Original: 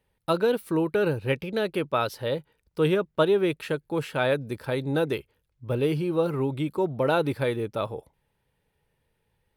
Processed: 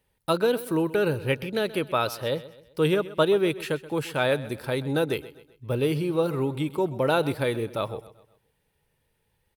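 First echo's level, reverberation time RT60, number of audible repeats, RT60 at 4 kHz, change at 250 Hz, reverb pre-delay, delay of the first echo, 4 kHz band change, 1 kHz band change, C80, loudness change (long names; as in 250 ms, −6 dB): −17.0 dB, no reverb audible, 3, no reverb audible, 0.0 dB, no reverb audible, 129 ms, +3.0 dB, +0.5 dB, no reverb audible, +0.5 dB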